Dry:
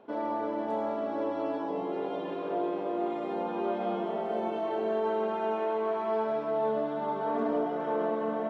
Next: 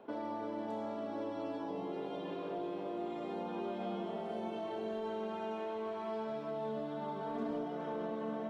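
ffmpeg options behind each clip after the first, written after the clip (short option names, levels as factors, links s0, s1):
-filter_complex "[0:a]acrossover=split=210|3000[s0][s1][s2];[s1]acompressor=threshold=0.00794:ratio=3[s3];[s0][s3][s2]amix=inputs=3:normalize=0"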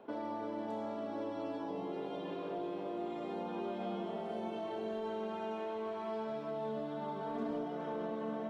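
-af anull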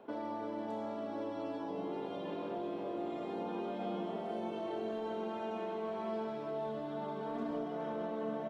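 -filter_complex "[0:a]asplit=2[s0][s1];[s1]adelay=1691,volume=0.447,highshelf=f=4000:g=-38[s2];[s0][s2]amix=inputs=2:normalize=0"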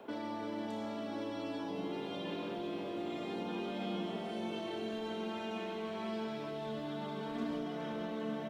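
-filter_complex "[0:a]acrossover=split=320|1800[s0][s1][s2];[s1]alimiter=level_in=8.41:limit=0.0631:level=0:latency=1,volume=0.119[s3];[s2]acontrast=39[s4];[s0][s3][s4]amix=inputs=3:normalize=0,volume=1.5"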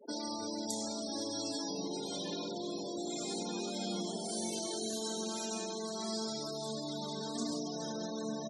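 -af "aexciter=amount=10.7:drive=9.5:freq=4600,afftfilt=real='re*gte(hypot(re,im),0.0112)':imag='im*gte(hypot(re,im),0.0112)':win_size=1024:overlap=0.75"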